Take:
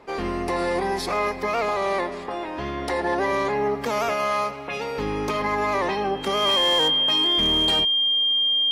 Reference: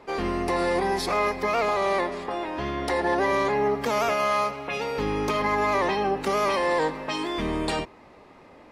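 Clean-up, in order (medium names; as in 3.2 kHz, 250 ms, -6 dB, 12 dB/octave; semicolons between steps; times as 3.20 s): clip repair -15 dBFS; band-stop 3.2 kHz, Q 30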